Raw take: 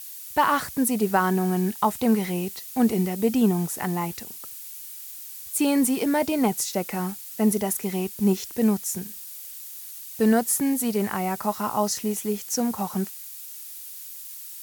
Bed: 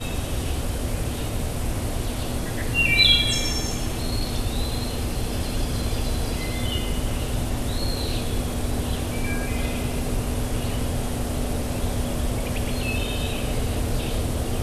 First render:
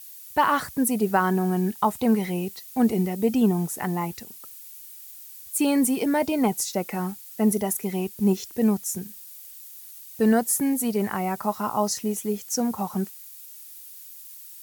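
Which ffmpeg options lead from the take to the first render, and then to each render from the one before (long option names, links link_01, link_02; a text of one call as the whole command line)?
ffmpeg -i in.wav -af "afftdn=noise_reduction=6:noise_floor=-40" out.wav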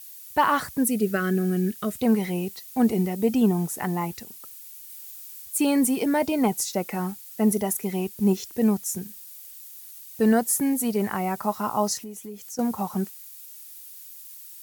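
ffmpeg -i in.wav -filter_complex "[0:a]asettb=1/sr,asplit=3[link_01][link_02][link_03];[link_01]atrim=end=0.854[link_04];[link_02]atrim=start=0.85:end=2.02,asetpts=PTS-STARTPTS,afade=type=in:duration=0.004:curve=qsin,afade=type=out:start_time=1.166:duration=0.004:curve=qsin,asuperstop=centerf=900:order=4:qfactor=1.2[link_05];[link_03]atrim=start=2.016[link_06];[link_04][link_05]acrossfade=duration=0.004:curve1=hsin:curve2=qsin[link_07];[link_07][link_06]acrossfade=duration=0.004:curve1=qsin:curve2=hsin,asettb=1/sr,asplit=3[link_08][link_09][link_10];[link_08]atrim=end=4.854[link_11];[link_09]atrim=start=4.85:end=5.46,asetpts=PTS-STARTPTS,afade=type=in:duration=0.004:curve=qsin,afade=type=out:start_time=0.606:duration=0.004:curve=qsin,asplit=2[link_12][link_13];[link_13]adelay=45,volume=-3dB[link_14];[link_12][link_14]amix=inputs=2:normalize=0,atrim=end_sample=26901[link_15];[link_10]atrim=start=5.456[link_16];[link_11][link_15]acrossfade=duration=0.004:curve1=hsin:curve2=qsin[link_17];[link_17][link_16]acrossfade=duration=0.004:curve1=qsin:curve2=hsin,asettb=1/sr,asplit=3[link_18][link_19][link_20];[link_18]atrim=end=11.974[link_21];[link_19]atrim=start=11.97:end=12.59,asetpts=PTS-STARTPTS,afade=type=in:duration=0.004:curve=qsin,afade=type=out:start_time=0.616:duration=0.004:curve=qsin,acompressor=threshold=-38dB:ratio=3:attack=3.2:release=140:knee=1:detection=peak[link_22];[link_20]atrim=start=12.586[link_23];[link_21][link_22]acrossfade=duration=0.004:curve1=hsin:curve2=qsin[link_24];[link_24][link_23]acrossfade=duration=0.004:curve1=qsin:curve2=hsin" out.wav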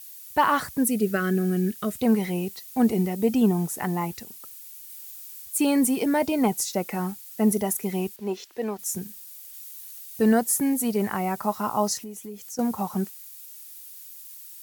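ffmpeg -i in.wav -filter_complex "[0:a]asettb=1/sr,asplit=3[link_01][link_02][link_03];[link_01]atrim=end=8.164[link_04];[link_02]atrim=start=8.16:end=8.79,asetpts=PTS-STARTPTS,afade=type=in:duration=0.004:curve=qsin,afade=type=out:start_time=0.626:duration=0.004:curve=qsin,acrossover=split=340 4800:gain=0.112 1 0.224[link_05][link_06][link_07];[link_05][link_06][link_07]amix=inputs=3:normalize=0[link_08];[link_03]atrim=start=8.786[link_09];[link_04][link_08]acrossfade=duration=0.004:curve1=hsin:curve2=qsin[link_10];[link_10][link_09]acrossfade=duration=0.004:curve1=qsin:curve2=hsin,asettb=1/sr,asplit=3[link_11][link_12][link_13];[link_11]atrim=end=9.524[link_14];[link_12]atrim=start=9.52:end=10.22,asetpts=PTS-STARTPTS,afade=type=in:duration=0.004:curve=qsin,afade=type=out:start_time=0.696:duration=0.004:curve=qsin,asplit=2[link_15][link_16];[link_16]adelay=14,volume=-3dB[link_17];[link_15][link_17]amix=inputs=2:normalize=0,atrim=end_sample=30870[link_18];[link_13]atrim=start=10.216[link_19];[link_14][link_18]acrossfade=duration=0.004:curve1=hsin:curve2=qsin[link_20];[link_20][link_19]acrossfade=duration=0.004:curve1=qsin:curve2=hsin" out.wav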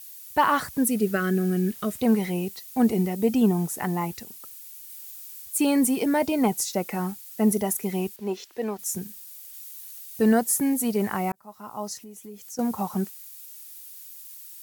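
ffmpeg -i in.wav -filter_complex "[0:a]asettb=1/sr,asplit=3[link_01][link_02][link_03];[link_01]atrim=end=0.734[link_04];[link_02]atrim=start=0.73:end=2.29,asetpts=PTS-STARTPTS,afade=type=in:duration=0.004:curve=qsin,afade=type=out:start_time=1.556:duration=0.004:curve=qsin,acrusher=bits=9:dc=4:mix=0:aa=0.000001[link_05];[link_03]atrim=start=2.286[link_06];[link_04][link_05]acrossfade=duration=0.004:curve1=hsin:curve2=qsin[link_07];[link_07][link_06]acrossfade=duration=0.004:curve1=qsin:curve2=hsin,asplit=2[link_08][link_09];[link_08]atrim=end=11.32,asetpts=PTS-STARTPTS,afade=type=out:start_time=11.316:duration=0.004:curve=hsin[link_10];[link_09]atrim=start=11.32,asetpts=PTS-STARTPTS,afade=type=in:duration=1.45[link_11];[link_10][link_11]concat=n=2:v=0:a=1" out.wav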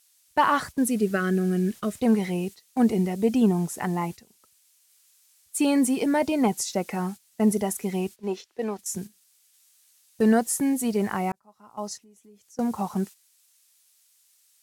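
ffmpeg -i in.wav -af "agate=range=-11dB:threshold=-35dB:ratio=16:detection=peak,lowpass=9500" out.wav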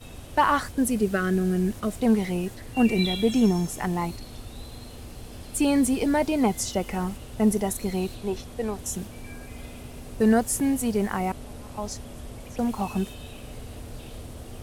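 ffmpeg -i in.wav -i bed.wav -filter_complex "[1:a]volume=-14.5dB[link_01];[0:a][link_01]amix=inputs=2:normalize=0" out.wav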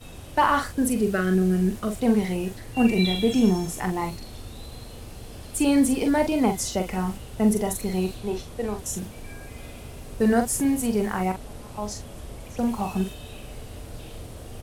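ffmpeg -i in.wav -filter_complex "[0:a]asplit=2[link_01][link_02];[link_02]adelay=43,volume=-6.5dB[link_03];[link_01][link_03]amix=inputs=2:normalize=0" out.wav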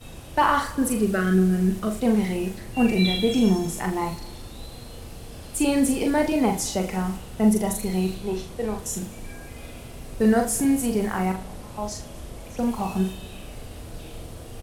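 ffmpeg -i in.wav -filter_complex "[0:a]asplit=2[link_01][link_02];[link_02]adelay=37,volume=-7dB[link_03];[link_01][link_03]amix=inputs=2:normalize=0,aecho=1:1:112|224|336|448|560:0.112|0.0651|0.0377|0.0219|0.0127" out.wav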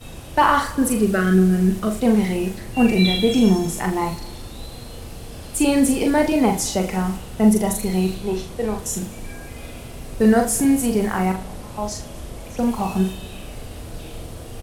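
ffmpeg -i in.wav -af "volume=4dB" out.wav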